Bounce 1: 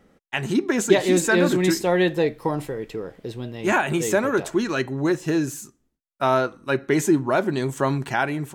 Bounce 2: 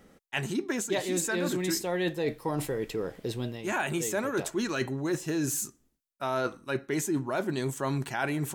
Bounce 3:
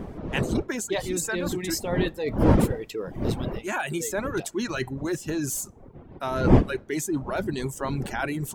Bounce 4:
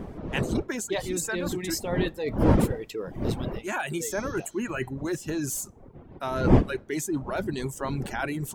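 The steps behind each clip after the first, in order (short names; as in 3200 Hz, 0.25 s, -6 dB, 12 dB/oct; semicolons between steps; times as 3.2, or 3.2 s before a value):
high shelf 4900 Hz +8 dB; reverse; compressor 6:1, threshold -27 dBFS, peak gain reduction 16 dB; reverse
wind noise 320 Hz -29 dBFS; reverb removal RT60 0.88 s; gain +2 dB
spectral repair 4.09–4.81, 3000–6400 Hz both; gain -1.5 dB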